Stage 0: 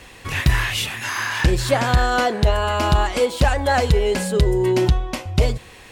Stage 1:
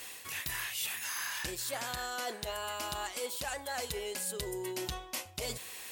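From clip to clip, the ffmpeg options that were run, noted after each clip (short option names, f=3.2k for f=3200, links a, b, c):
-af "aemphasis=mode=production:type=riaa,areverse,acompressor=threshold=-28dB:ratio=5,areverse,volume=-7.5dB"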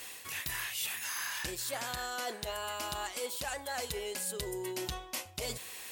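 -af anull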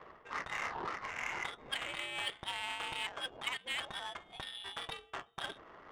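-af "lowpass=f=3.2k:t=q:w=0.5098,lowpass=f=3.2k:t=q:w=0.6013,lowpass=f=3.2k:t=q:w=0.9,lowpass=f=3.2k:t=q:w=2.563,afreqshift=-3800,adynamicsmooth=sensitivity=6.5:basefreq=590,volume=4.5dB"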